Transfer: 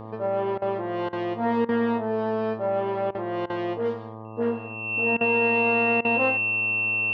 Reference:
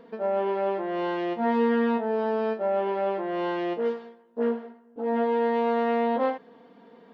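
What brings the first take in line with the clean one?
hum removal 110.1 Hz, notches 11
notch filter 2,700 Hz, Q 30
repair the gap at 0:00.58/0:01.09/0:01.65/0:03.11/0:03.46/0:05.17/0:06.01, 37 ms

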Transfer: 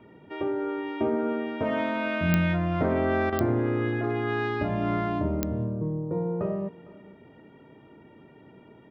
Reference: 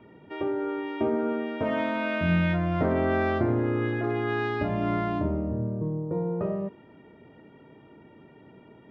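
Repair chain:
click removal
repair the gap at 0:03.30, 23 ms
echo removal 456 ms −21.5 dB

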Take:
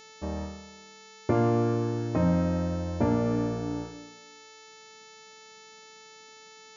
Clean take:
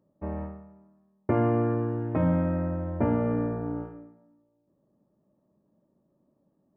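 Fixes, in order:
hum removal 439.1 Hz, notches 16

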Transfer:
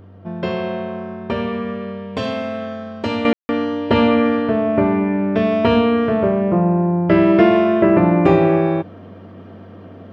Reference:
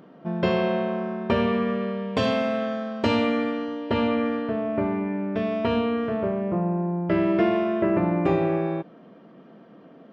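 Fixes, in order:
hum removal 95.8 Hz, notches 5
ambience match 0:03.33–0:03.49
level correction −9 dB, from 0:03.25

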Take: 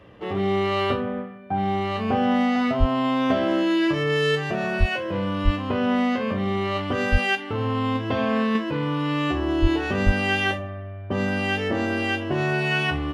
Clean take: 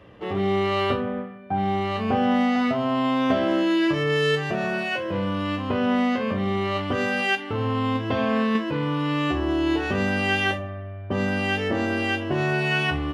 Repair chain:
high-pass at the plosives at 0:02.79/0:04.79/0:05.44/0:07.11/0:09.61/0:10.05

